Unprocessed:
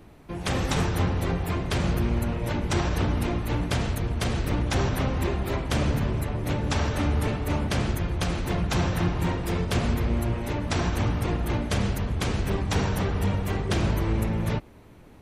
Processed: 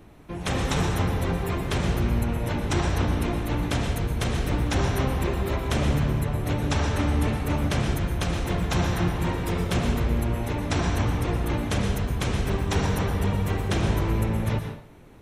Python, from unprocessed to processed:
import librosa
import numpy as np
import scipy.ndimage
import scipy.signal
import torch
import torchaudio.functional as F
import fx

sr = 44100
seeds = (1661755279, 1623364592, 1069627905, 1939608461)

y = fx.notch(x, sr, hz=4700.0, q=14.0)
y = fx.rev_plate(y, sr, seeds[0], rt60_s=0.52, hf_ratio=0.9, predelay_ms=105, drr_db=6.5)